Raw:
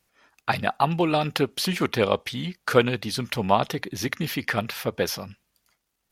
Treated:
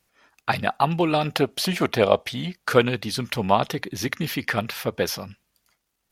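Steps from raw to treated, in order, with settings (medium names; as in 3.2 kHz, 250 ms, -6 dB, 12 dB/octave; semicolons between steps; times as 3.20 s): 1.24–2.54 s: peaking EQ 660 Hz +9.5 dB 0.39 oct; trim +1 dB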